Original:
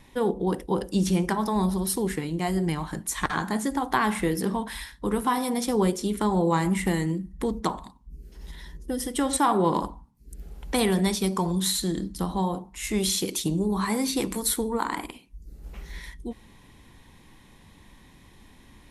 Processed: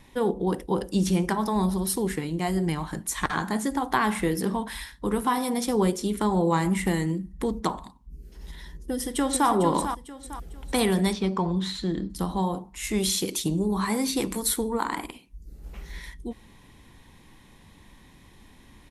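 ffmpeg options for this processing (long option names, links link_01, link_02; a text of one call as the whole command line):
ffmpeg -i in.wav -filter_complex "[0:a]asplit=2[link_01][link_02];[link_02]afade=type=in:start_time=8.62:duration=0.01,afade=type=out:start_time=9.49:duration=0.01,aecho=0:1:450|900|1350|1800:0.398107|0.139338|0.0487681|0.0170688[link_03];[link_01][link_03]amix=inputs=2:normalize=0,asettb=1/sr,asplit=3[link_04][link_05][link_06];[link_04]atrim=end=11.134[link_07];[link_05]atrim=start=11.13:end=12.1,asetpts=PTS-STARTPTS,afade=type=in:duration=0.004:curve=qsin,afade=type=out:start_time=0.966:duration=0.004:curve=qsin,lowpass=3300[link_08];[link_06]atrim=start=12.096[link_09];[link_07][link_08]acrossfade=duration=0.004:curve1=hsin:curve2=qsin[link_10];[link_10][link_09]acrossfade=duration=0.004:curve1=qsin:curve2=hsin" out.wav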